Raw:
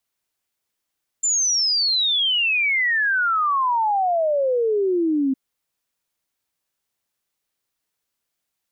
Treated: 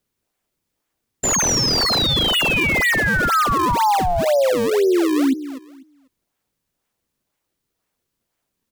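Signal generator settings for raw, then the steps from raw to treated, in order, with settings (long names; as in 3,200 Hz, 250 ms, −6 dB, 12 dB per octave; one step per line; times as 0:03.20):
exponential sine sweep 7,300 Hz → 260 Hz 4.11 s −17 dBFS
repeating echo 247 ms, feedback 23%, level −13.5 dB
in parallel at −3 dB: sample-and-hold swept by an LFO 36×, swing 160% 2 Hz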